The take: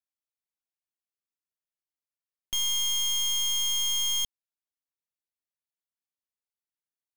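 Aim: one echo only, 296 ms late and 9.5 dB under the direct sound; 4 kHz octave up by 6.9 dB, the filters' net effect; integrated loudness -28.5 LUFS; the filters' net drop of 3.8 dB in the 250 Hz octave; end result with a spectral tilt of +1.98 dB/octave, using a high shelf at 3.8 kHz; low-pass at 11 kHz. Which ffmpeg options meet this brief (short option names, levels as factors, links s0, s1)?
-af "lowpass=11000,equalizer=f=250:t=o:g=-7.5,highshelf=f=3800:g=3.5,equalizer=f=4000:t=o:g=7.5,aecho=1:1:296:0.335,volume=0.282"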